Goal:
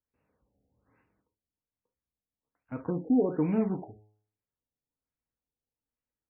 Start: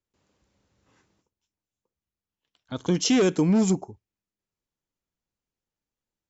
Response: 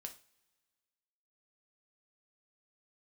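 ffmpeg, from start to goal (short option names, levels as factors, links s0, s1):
-filter_complex "[0:a]bandreject=f=105.8:t=h:w=4,bandreject=f=211.6:t=h:w=4,bandreject=f=317.4:t=h:w=4,bandreject=f=423.2:t=h:w=4,bandreject=f=529:t=h:w=4,bandreject=f=634.8:t=h:w=4,bandreject=f=740.6:t=h:w=4,bandreject=f=846.4:t=h:w=4,bandreject=f=952.2:t=h:w=4,bandreject=f=1058:t=h:w=4,bandreject=f=1163.8:t=h:w=4,bandreject=f=1269.6:t=h:w=4,bandreject=f=1375.4:t=h:w=4,bandreject=f=1481.2:t=h:w=4,bandreject=f=1587:t=h:w=4,bandreject=f=1692.8:t=h:w=4,bandreject=f=1798.6:t=h:w=4,bandreject=f=1904.4:t=h:w=4,bandreject=f=2010.2:t=h:w=4,bandreject=f=2116:t=h:w=4,bandreject=f=2221.8:t=h:w=4,bandreject=f=2327.6:t=h:w=4,bandreject=f=2433.4:t=h:w=4,bandreject=f=2539.2:t=h:w=4,bandreject=f=2645:t=h:w=4,bandreject=f=2750.8:t=h:w=4,bandreject=f=2856.6:t=h:w=4,bandreject=f=2962.4:t=h:w=4,bandreject=f=3068.2:t=h:w=4,bandreject=f=3174:t=h:w=4[s0];[1:a]atrim=start_sample=2205,atrim=end_sample=3528[s1];[s0][s1]afir=irnorm=-1:irlink=0,afftfilt=real='re*lt(b*sr/1024,800*pow(2900/800,0.5+0.5*sin(2*PI*1.2*pts/sr)))':imag='im*lt(b*sr/1024,800*pow(2900/800,0.5+0.5*sin(2*PI*1.2*pts/sr)))':win_size=1024:overlap=0.75"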